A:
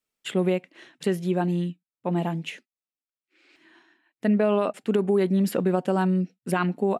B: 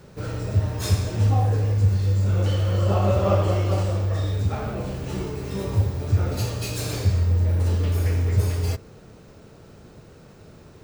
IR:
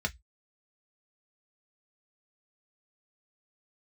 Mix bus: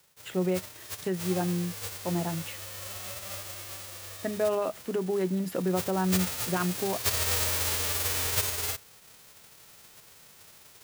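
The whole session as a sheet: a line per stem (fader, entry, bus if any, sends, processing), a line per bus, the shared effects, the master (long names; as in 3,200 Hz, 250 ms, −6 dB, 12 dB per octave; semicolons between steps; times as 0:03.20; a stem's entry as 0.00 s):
−6.5 dB, 0.00 s, send −13.5 dB, no processing
0:05.60 −20 dB → 0:06.33 −8.5 dB, 0.00 s, no send, spectral envelope flattened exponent 0.1; upward compression, threshold −39 dBFS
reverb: on, RT60 0.10 s, pre-delay 3 ms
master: noise gate with hold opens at −52 dBFS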